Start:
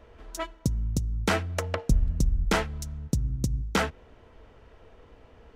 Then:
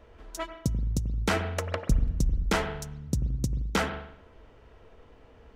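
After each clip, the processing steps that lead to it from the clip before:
convolution reverb RT60 0.70 s, pre-delay 89 ms, DRR 9.5 dB
level −1.5 dB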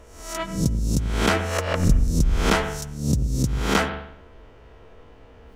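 peak hold with a rise ahead of every peak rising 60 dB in 0.57 s
level +4 dB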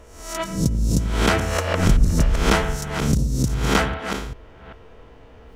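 delay that plays each chunk backwards 394 ms, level −8 dB
level +1.5 dB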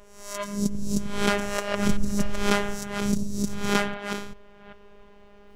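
phases set to zero 203 Hz
level −2.5 dB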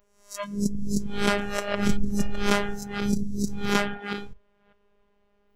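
noise reduction from a noise print of the clip's start 16 dB

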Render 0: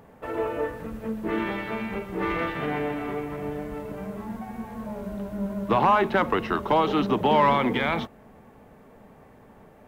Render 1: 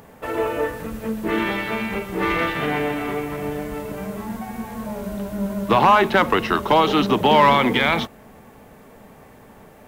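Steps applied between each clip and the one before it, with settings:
high-shelf EQ 2,800 Hz +10 dB
level +4.5 dB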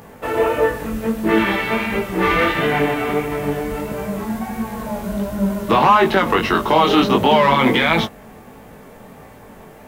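brickwall limiter −9.5 dBFS, peak gain reduction 6.5 dB
chorus effect 1.5 Hz, delay 18 ms, depth 4.9 ms
level +8 dB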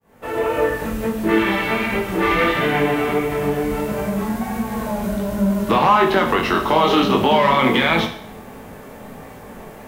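fade in at the beginning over 0.65 s
in parallel at +2.5 dB: downward compressor, threshold −25 dBFS, peak gain reduction 15.5 dB
on the sum: four-comb reverb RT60 0.61 s, combs from 30 ms, DRR 6.5 dB
level −4.5 dB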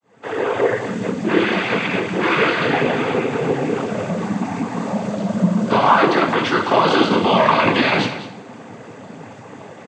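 cochlear-implant simulation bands 16
single-tap delay 199 ms −13.5 dB
level +1 dB

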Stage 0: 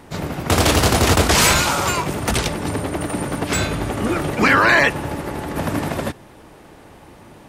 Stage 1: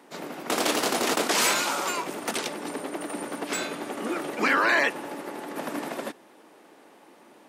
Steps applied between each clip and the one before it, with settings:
high-pass filter 240 Hz 24 dB per octave
level −8 dB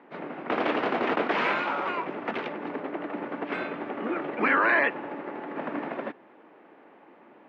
low-pass filter 2,500 Hz 24 dB per octave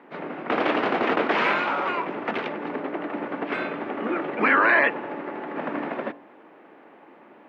hum removal 47.88 Hz, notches 22
level +4 dB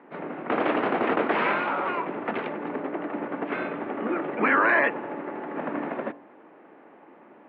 high-frequency loss of the air 340 metres

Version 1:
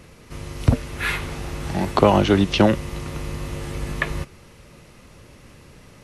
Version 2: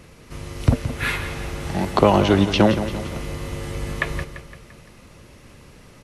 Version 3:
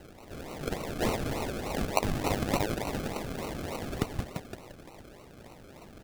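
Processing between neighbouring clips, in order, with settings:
repeating echo 171 ms, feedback 51%, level −11 dB
high-pass filter 870 Hz 24 dB per octave; downward compressor 6 to 1, threshold −29 dBFS, peak gain reduction 11.5 dB; sample-and-hold swept by an LFO 37×, swing 60% 3.4 Hz; level +4 dB

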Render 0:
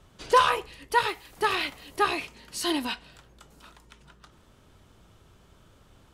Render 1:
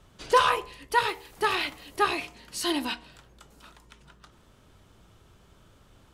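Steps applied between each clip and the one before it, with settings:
hum removal 78.47 Hz, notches 14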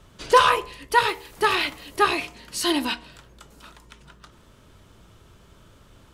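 notch filter 770 Hz, Q 12
level +5 dB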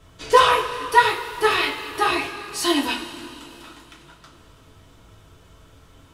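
coupled-rooms reverb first 0.26 s, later 3.1 s, from −18 dB, DRR −3 dB
level −2.5 dB

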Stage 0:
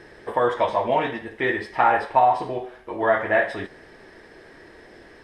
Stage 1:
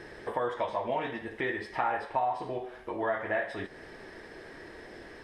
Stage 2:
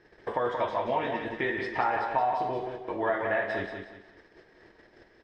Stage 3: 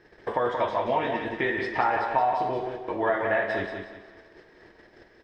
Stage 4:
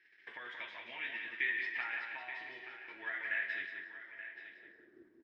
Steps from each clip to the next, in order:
downward compressor 2 to 1, threshold −36 dBFS, peak gain reduction 13 dB
low-pass filter 6,700 Hz 24 dB per octave; noise gate −44 dBFS, range −17 dB; repeating echo 179 ms, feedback 33%, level −6 dB; level +2 dB
four-comb reverb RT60 2.5 s, combs from 26 ms, DRR 17.5 dB; level +3 dB
flat-topped bell 750 Hz −12 dB; band-pass filter sweep 2,300 Hz → 310 Hz, 0:03.68–0:05.07; single-tap delay 878 ms −12 dB; level −1 dB

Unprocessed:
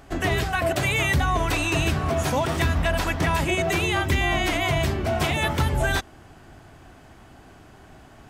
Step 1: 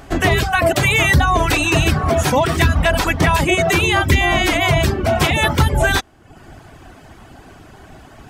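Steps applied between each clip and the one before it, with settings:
reverb reduction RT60 0.7 s
level +9 dB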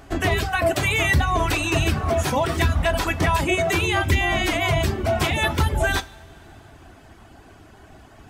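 coupled-rooms reverb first 0.24 s, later 2.7 s, from −18 dB, DRR 11 dB
level −6.5 dB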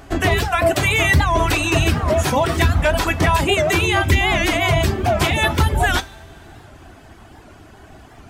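wow of a warped record 78 rpm, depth 160 cents
level +4 dB

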